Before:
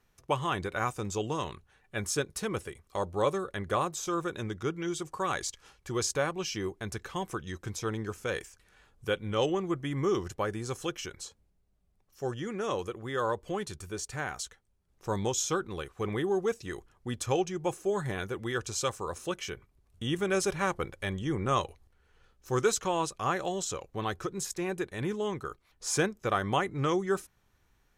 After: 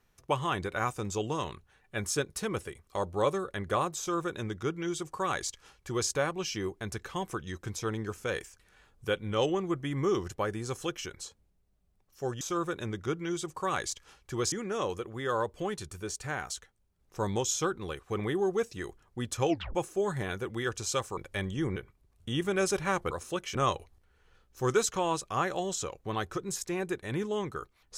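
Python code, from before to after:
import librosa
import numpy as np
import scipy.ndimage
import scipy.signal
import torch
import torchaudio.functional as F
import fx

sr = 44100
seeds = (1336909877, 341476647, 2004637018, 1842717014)

y = fx.edit(x, sr, fx.duplicate(start_s=3.98, length_s=2.11, to_s=12.41),
    fx.tape_stop(start_s=17.38, length_s=0.26),
    fx.swap(start_s=19.06, length_s=0.44, other_s=20.85, other_length_s=0.59), tone=tone)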